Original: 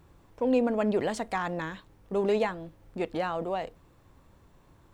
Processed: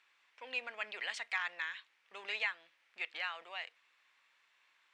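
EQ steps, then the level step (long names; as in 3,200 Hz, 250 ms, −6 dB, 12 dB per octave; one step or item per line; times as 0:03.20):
four-pole ladder band-pass 2,700 Hz, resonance 40%
+12.0 dB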